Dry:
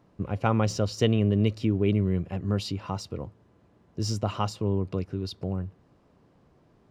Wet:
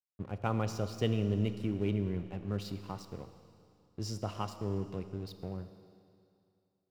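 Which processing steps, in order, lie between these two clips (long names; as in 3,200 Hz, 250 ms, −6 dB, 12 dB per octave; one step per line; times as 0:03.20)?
dead-zone distortion −43 dBFS
four-comb reverb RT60 2.5 s, combs from 27 ms, DRR 10 dB
level −8 dB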